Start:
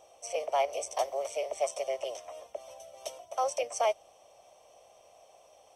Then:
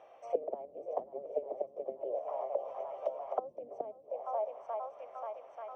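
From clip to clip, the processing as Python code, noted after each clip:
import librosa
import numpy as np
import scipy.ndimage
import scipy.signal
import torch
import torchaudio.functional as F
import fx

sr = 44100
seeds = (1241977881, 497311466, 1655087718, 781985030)

y = scipy.signal.sosfilt(scipy.signal.butter(2, 150.0, 'highpass', fs=sr, output='sos'), x)
y = fx.echo_swing(y, sr, ms=886, ratio=1.5, feedback_pct=56, wet_db=-13)
y = fx.envelope_lowpass(y, sr, base_hz=220.0, top_hz=1900.0, q=2.1, full_db=-27.5, direction='down')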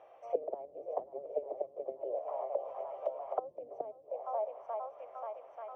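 y = fx.lowpass(x, sr, hz=2500.0, slope=6)
y = fx.peak_eq(y, sr, hz=220.0, db=-10.0, octaves=0.47)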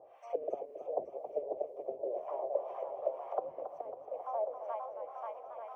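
y = fx.notch(x, sr, hz=1300.0, q=19.0)
y = fx.harmonic_tremolo(y, sr, hz=2.0, depth_pct=100, crossover_hz=750.0)
y = fx.echo_warbled(y, sr, ms=273, feedback_pct=66, rate_hz=2.8, cents=104, wet_db=-9.5)
y = y * 10.0 ** (5.0 / 20.0)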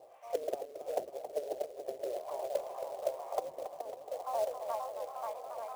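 y = fx.rider(x, sr, range_db=5, speed_s=2.0)
y = fx.quant_float(y, sr, bits=2)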